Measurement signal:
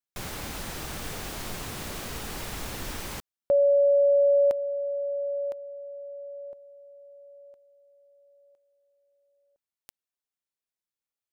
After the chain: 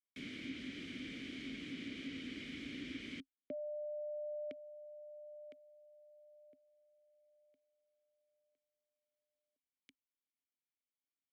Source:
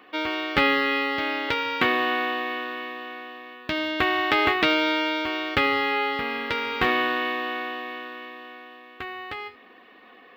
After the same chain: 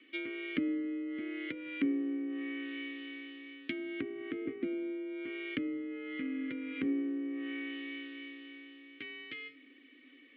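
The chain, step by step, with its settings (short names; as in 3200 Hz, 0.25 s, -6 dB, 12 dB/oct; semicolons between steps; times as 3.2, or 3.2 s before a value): frequency shift +32 Hz; vowel filter i; treble ducked by the level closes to 570 Hz, closed at -33.5 dBFS; gain +4 dB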